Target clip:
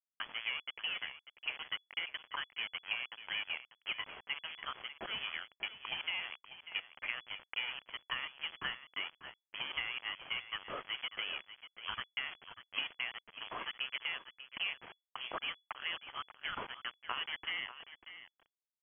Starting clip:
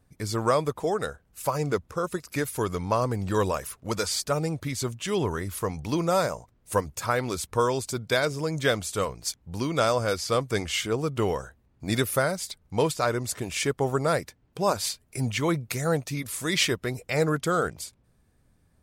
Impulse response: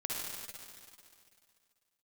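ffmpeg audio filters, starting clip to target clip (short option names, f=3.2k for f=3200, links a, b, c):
-af "highpass=570,acompressor=threshold=-40dB:ratio=10,aresample=11025,aeval=exprs='val(0)*gte(abs(val(0)),0.00708)':c=same,aresample=44100,aecho=1:1:593:0.224,lowpass=f=2.9k:t=q:w=0.5098,lowpass=f=2.9k:t=q:w=0.6013,lowpass=f=2.9k:t=q:w=0.9,lowpass=f=2.9k:t=q:w=2.563,afreqshift=-3400,volume=5dB"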